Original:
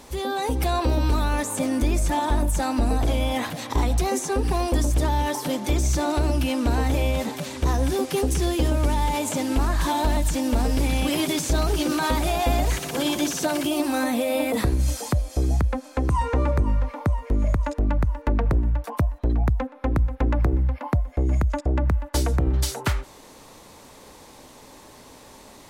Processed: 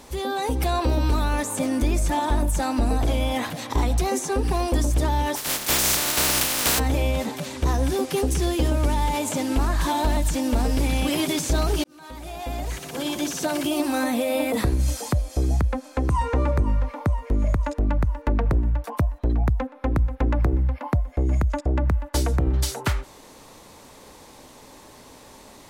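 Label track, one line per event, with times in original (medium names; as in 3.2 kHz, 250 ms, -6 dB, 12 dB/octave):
5.350000	6.780000	spectral contrast reduction exponent 0.18
11.840000	13.720000	fade in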